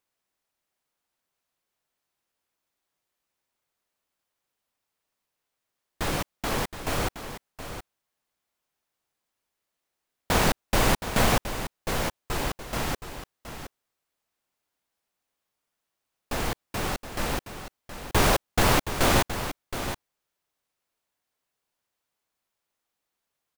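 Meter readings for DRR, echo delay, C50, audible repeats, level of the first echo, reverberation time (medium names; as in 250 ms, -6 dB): no reverb, 720 ms, no reverb, 1, -10.5 dB, no reverb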